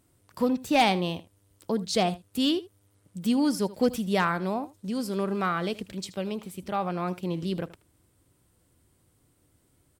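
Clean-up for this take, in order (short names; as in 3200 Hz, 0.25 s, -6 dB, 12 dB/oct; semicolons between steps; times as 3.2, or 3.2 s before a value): clip repair -14.5 dBFS; inverse comb 78 ms -18 dB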